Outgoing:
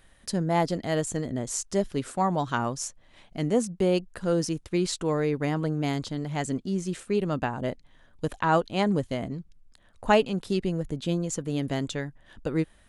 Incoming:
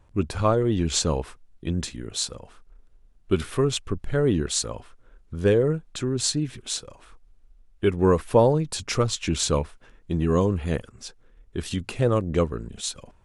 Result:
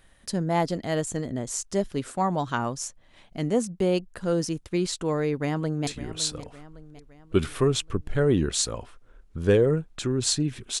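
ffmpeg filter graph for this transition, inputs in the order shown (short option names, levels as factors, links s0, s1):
-filter_complex "[0:a]apad=whole_dur=10.8,atrim=end=10.8,atrim=end=5.872[s0];[1:a]atrim=start=1.838:end=6.77[s1];[s0][s1]acrossfade=d=0.004:c1=hsin:c2=hsin,asplit=2[s2][s3];[s3]afade=t=in:st=5.28:d=0.01,afade=t=out:st=5.87:d=0.01,aecho=0:1:560|1120|1680|2240|2800:0.199526|0.0997631|0.0498816|0.0249408|0.0124704[s4];[s2][s4]amix=inputs=2:normalize=0"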